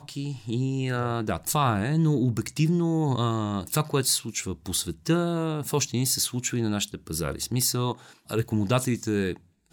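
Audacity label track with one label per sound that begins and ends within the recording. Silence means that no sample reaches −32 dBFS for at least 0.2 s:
8.300000	9.360000	sound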